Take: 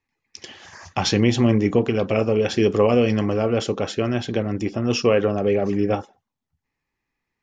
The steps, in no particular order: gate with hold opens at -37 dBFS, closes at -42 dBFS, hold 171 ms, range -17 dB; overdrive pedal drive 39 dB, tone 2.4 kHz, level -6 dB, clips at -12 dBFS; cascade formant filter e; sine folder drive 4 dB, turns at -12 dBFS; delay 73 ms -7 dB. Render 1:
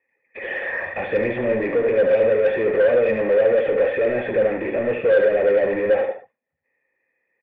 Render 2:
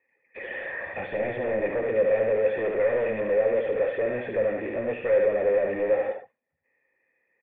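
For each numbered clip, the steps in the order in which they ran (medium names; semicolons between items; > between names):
gate with hold > overdrive pedal > cascade formant filter > sine folder > delay; gate with hold > sine folder > delay > overdrive pedal > cascade formant filter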